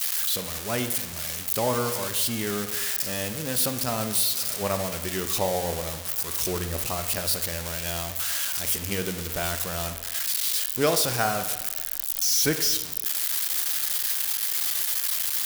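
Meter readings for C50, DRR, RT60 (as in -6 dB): 10.0 dB, 8.0 dB, 1.1 s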